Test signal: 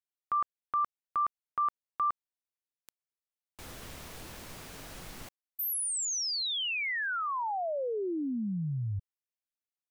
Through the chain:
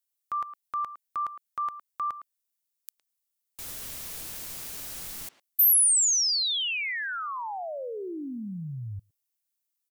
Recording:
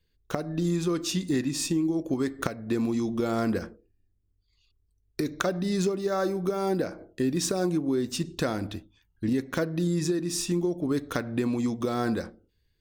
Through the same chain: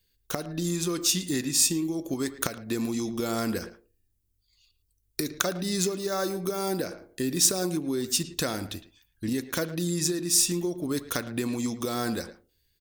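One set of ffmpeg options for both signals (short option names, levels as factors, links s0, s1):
-filter_complex "[0:a]asplit=2[s0][s1];[s1]adelay=110,highpass=300,lowpass=3400,asoftclip=type=hard:threshold=0.1,volume=0.224[s2];[s0][s2]amix=inputs=2:normalize=0,crystalizer=i=4:c=0,volume=0.708"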